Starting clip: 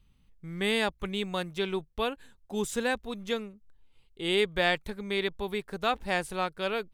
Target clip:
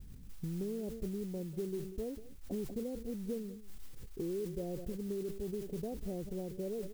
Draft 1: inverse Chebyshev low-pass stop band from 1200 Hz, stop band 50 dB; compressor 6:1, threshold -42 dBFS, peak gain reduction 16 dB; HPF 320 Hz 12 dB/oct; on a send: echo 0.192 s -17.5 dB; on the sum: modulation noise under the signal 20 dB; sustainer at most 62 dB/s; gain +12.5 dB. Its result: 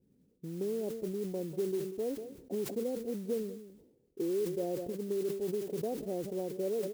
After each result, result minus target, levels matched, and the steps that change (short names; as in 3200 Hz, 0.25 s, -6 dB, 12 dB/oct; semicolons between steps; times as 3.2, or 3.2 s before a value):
compressor: peak gain reduction -7.5 dB; 250 Hz band -2.5 dB
change: compressor 6:1, threshold -51 dBFS, peak gain reduction 23.5 dB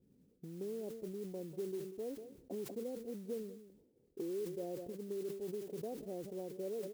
250 Hz band -2.5 dB
remove: HPF 320 Hz 12 dB/oct